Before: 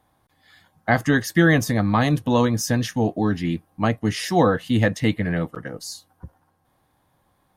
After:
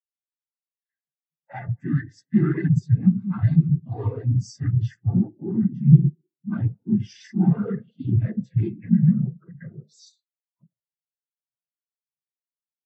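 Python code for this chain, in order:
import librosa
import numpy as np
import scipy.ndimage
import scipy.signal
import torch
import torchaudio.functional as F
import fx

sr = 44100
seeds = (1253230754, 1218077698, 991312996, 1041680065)

p1 = fx.stretch_vocoder(x, sr, factor=1.7)
p2 = p1 + 0.74 * np.pad(p1, (int(5.9 * sr / 1000.0), 0))[:len(p1)]
p3 = fx.quant_float(p2, sr, bits=2)
p4 = fx.hum_notches(p3, sr, base_hz=50, count=10)
p5 = fx.echo_tape(p4, sr, ms=71, feedback_pct=62, wet_db=-17.5, lp_hz=1700.0, drive_db=4.0, wow_cents=29)
p6 = fx.rider(p5, sr, range_db=5, speed_s=2.0)
p7 = p5 + F.gain(torch.from_numpy(p6), 1.0).numpy()
p8 = 10.0 ** (-14.5 / 20.0) * np.tanh(p7 / 10.0 ** (-14.5 / 20.0))
p9 = fx.dynamic_eq(p8, sr, hz=540.0, q=0.87, threshold_db=-33.0, ratio=4.0, max_db=-7)
p10 = fx.noise_vocoder(p9, sr, seeds[0], bands=16)
p11 = fx.spectral_expand(p10, sr, expansion=2.5)
y = F.gain(torch.from_numpy(p11), 5.0).numpy()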